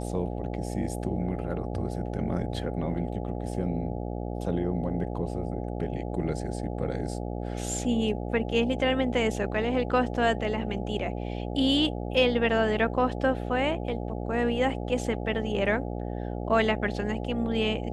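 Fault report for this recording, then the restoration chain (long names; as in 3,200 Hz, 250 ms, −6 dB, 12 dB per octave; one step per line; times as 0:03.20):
mains buzz 60 Hz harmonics 14 −33 dBFS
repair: hum removal 60 Hz, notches 14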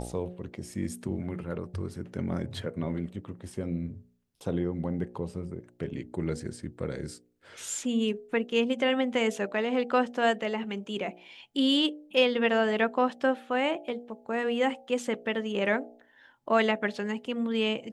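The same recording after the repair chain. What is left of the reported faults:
none of them is left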